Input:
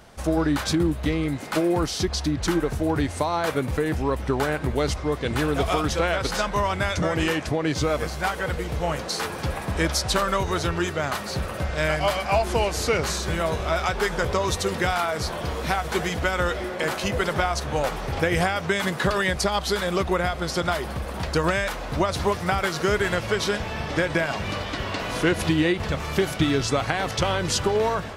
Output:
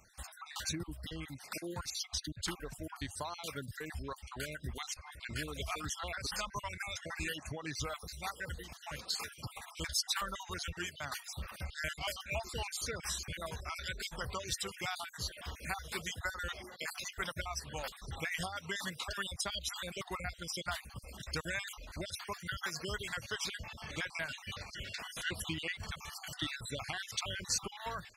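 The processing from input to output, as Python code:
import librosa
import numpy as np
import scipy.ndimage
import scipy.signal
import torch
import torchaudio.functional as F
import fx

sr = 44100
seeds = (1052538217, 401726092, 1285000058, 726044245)

y = fx.spec_dropout(x, sr, seeds[0], share_pct=43)
y = fx.tone_stack(y, sr, knobs='5-5-5')
y = fx.dereverb_blind(y, sr, rt60_s=1.0)
y = F.gain(torch.from_numpy(y), 1.0).numpy()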